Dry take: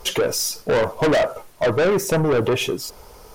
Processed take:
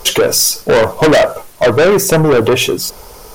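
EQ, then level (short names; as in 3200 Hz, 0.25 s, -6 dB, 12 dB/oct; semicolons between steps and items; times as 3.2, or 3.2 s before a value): high shelf 5000 Hz +5 dB; notches 60/120/180 Hz; +8.5 dB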